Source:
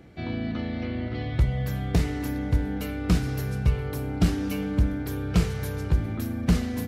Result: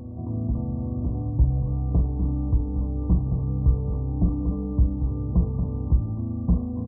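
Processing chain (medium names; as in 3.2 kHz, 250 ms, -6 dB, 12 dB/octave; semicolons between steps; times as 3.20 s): bass shelf 170 Hz +11 dB; band-stop 410 Hz, Q 12; in parallel at -7.5 dB: overload inside the chain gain 16.5 dB; on the sum: brick-wall FIR low-pass 1.2 kHz; doubling 45 ms -11 dB; on a send: reverse echo 901 ms -8 dB; on the sum: trim -8.5 dB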